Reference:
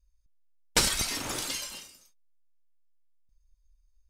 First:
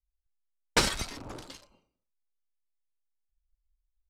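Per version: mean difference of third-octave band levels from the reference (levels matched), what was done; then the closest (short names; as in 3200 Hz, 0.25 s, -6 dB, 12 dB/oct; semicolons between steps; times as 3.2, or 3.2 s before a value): 10.0 dB: Wiener smoothing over 25 samples; LPF 3000 Hz 6 dB/oct; low shelf 160 Hz -4.5 dB; three-band expander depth 70%; gain -2 dB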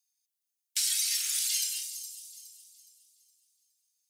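17.5 dB: Bessel high-pass 2900 Hz, order 8; high shelf 4400 Hz +9 dB; limiter -21.5 dBFS, peak gain reduction 14 dB; on a send: thin delay 0.416 s, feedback 38%, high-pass 5300 Hz, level -10 dB; on the sum: gain +2.5 dB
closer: first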